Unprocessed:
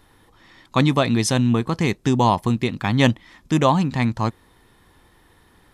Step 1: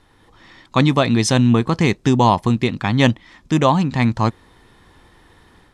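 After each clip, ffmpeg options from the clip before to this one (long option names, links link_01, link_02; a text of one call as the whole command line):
ffmpeg -i in.wav -af "dynaudnorm=framelen=170:gausssize=3:maxgain=5dB,lowpass=8400" out.wav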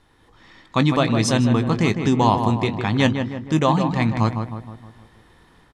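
ffmpeg -i in.wav -filter_complex "[0:a]asplit=2[link_01][link_02];[link_02]adelay=19,volume=-13dB[link_03];[link_01][link_03]amix=inputs=2:normalize=0,asplit=2[link_04][link_05];[link_05]adelay=156,lowpass=frequency=2000:poles=1,volume=-6.5dB,asplit=2[link_06][link_07];[link_07]adelay=156,lowpass=frequency=2000:poles=1,volume=0.52,asplit=2[link_08][link_09];[link_09]adelay=156,lowpass=frequency=2000:poles=1,volume=0.52,asplit=2[link_10][link_11];[link_11]adelay=156,lowpass=frequency=2000:poles=1,volume=0.52,asplit=2[link_12][link_13];[link_13]adelay=156,lowpass=frequency=2000:poles=1,volume=0.52,asplit=2[link_14][link_15];[link_15]adelay=156,lowpass=frequency=2000:poles=1,volume=0.52[link_16];[link_06][link_08][link_10][link_12][link_14][link_16]amix=inputs=6:normalize=0[link_17];[link_04][link_17]amix=inputs=2:normalize=0,volume=-3.5dB" out.wav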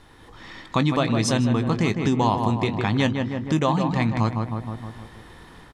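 ffmpeg -i in.wav -af "acompressor=threshold=-34dB:ratio=2,volume=7.5dB" out.wav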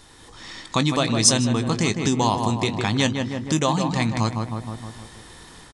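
ffmpeg -i in.wav -af "bass=frequency=250:gain=-1,treble=frequency=4000:gain=15,aresample=22050,aresample=44100" out.wav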